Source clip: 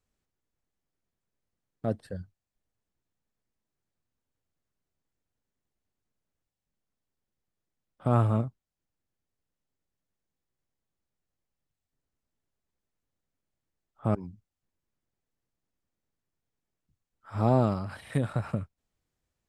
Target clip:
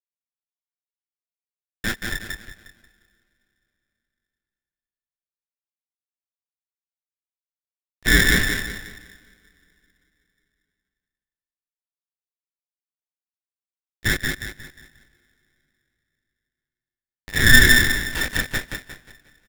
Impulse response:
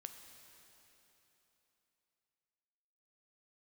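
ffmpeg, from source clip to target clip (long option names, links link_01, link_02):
-filter_complex "[0:a]agate=range=-9dB:threshold=-53dB:ratio=16:detection=peak,acompressor=mode=upward:threshold=-35dB:ratio=2.5,acrusher=bits=4:mix=0:aa=0.5,highpass=frequency=890:width_type=q:width=11,asplit=2[link_01][link_02];[link_02]adelay=20,volume=-3.5dB[link_03];[link_01][link_03]amix=inputs=2:normalize=0,aecho=1:1:179|358|537|716|895:0.596|0.232|0.0906|0.0353|0.0138,asplit=2[link_04][link_05];[1:a]atrim=start_sample=2205[link_06];[link_05][link_06]afir=irnorm=-1:irlink=0,volume=-11dB[link_07];[link_04][link_07]amix=inputs=2:normalize=0,aeval=exprs='val(0)*sgn(sin(2*PI*890*n/s))':channel_layout=same,volume=2.5dB"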